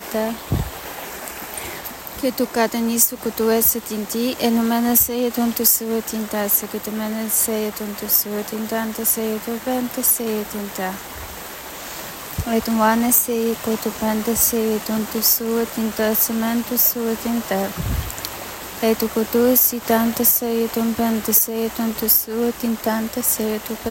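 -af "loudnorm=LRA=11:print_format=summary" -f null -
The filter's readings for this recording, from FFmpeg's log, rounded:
Input Integrated:    -19.1 LUFS
Input True Peak:      -1.1 dBTP
Input LRA:             4.3 LU
Input Threshold:     -29.5 LUFS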